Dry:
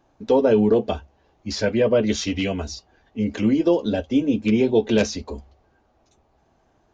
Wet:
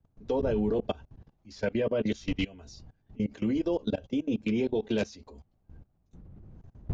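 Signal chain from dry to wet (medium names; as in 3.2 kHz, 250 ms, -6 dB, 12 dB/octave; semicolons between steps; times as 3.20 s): wind noise 110 Hz -34 dBFS; level held to a coarse grid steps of 22 dB; trim -4.5 dB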